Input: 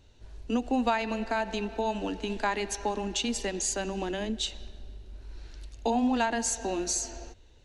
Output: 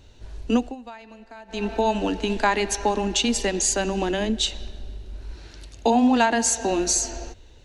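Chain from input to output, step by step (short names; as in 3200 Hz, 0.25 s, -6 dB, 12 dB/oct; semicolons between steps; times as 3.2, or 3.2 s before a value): 0.56–1.67 dip -21.5 dB, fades 0.19 s; 5.34–6.72 HPF 69 Hz 12 dB/oct; gain +8 dB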